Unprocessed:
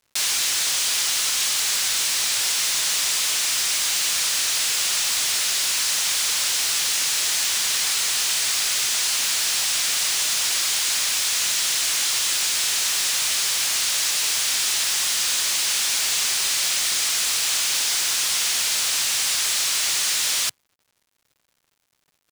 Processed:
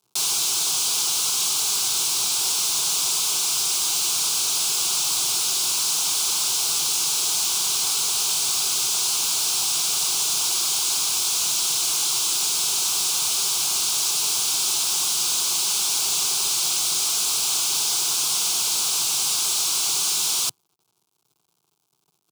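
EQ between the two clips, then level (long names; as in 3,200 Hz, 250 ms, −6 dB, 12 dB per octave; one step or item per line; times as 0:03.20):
high-pass filter 59 Hz
parametric band 260 Hz +5 dB 2.8 octaves
phaser with its sweep stopped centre 370 Hz, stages 8
+1.0 dB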